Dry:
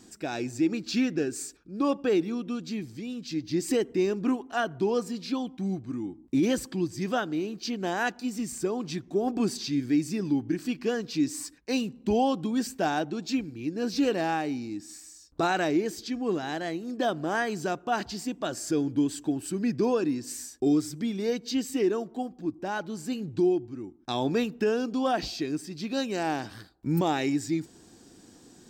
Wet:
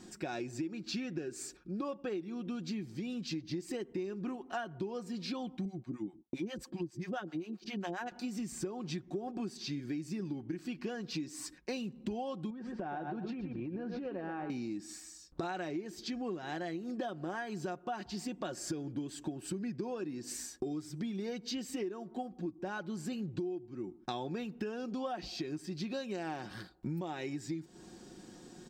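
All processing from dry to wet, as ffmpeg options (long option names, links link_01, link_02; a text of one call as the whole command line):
ffmpeg -i in.wav -filter_complex "[0:a]asettb=1/sr,asplit=3[link_01][link_02][link_03];[link_01]atrim=end=5.654[link_04];[link_02]atrim=start=5.65:end=8.12,asetpts=PTS-STARTPTS,afade=type=in:duration=0.004:curve=qsin,afade=type=out:start_time=2.466:duration=0.004:curve=qsin,highpass=44,agate=range=-33dB:threshold=-45dB:ratio=3:release=100:detection=peak,acrossover=split=650[link_05][link_06];[link_05]aeval=exprs='val(0)*(1-1/2+1/2*cos(2*PI*7.5*n/s))':channel_layout=same[link_07];[link_06]aeval=exprs='val(0)*(1-1/2-1/2*cos(2*PI*7.5*n/s))':channel_layout=same[link_08];[link_07][link_08]amix=inputs=2:normalize=0[link_09];[link_03]atrim=start=8.116[link_10];[link_04][link_09]acrossfade=duration=0.004:curve1=hsin:curve2=qsin[link_11];[link_11][link_10]acrossfade=duration=0.004:curve1=qsin:curve2=hsin,asettb=1/sr,asplit=3[link_12][link_13][link_14];[link_12]atrim=end=12.504[link_15];[link_13]atrim=start=12.5:end=14.5,asetpts=PTS-STARTPTS,afade=type=in:duration=0.004:curve=qsin,afade=type=out:start_time=1.996:duration=0.004:curve=qsin,lowpass=1700,aecho=1:1:120|240|360:0.335|0.077|0.0177,atrim=end_sample=88200,acompressor=threshold=-34dB:ratio=10:attack=3.2:release=140:knee=1:detection=peak[link_16];[link_14]atrim=start=14.496[link_17];[link_15][link_16]acrossfade=duration=0.004:curve1=hsin:curve2=qsin[link_18];[link_18][link_17]acrossfade=duration=0.004:curve1=qsin:curve2=hsin,highshelf=frequency=6300:gain=-9,aecho=1:1:5.5:0.45,acompressor=threshold=-36dB:ratio=12,volume=1dB" out.wav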